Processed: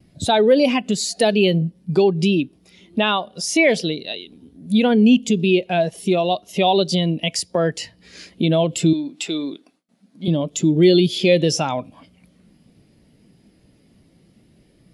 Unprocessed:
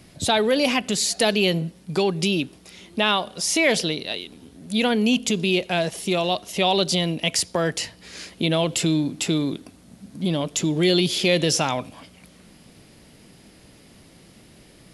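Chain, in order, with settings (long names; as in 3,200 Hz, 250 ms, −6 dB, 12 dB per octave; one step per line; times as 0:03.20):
0:08.93–0:10.28: meter weighting curve A
in parallel at +3 dB: downward compressor, threshold −30 dBFS, peak gain reduction 15 dB
on the sum: noise gate with hold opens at −37 dBFS
every bin expanded away from the loudest bin 1.5 to 1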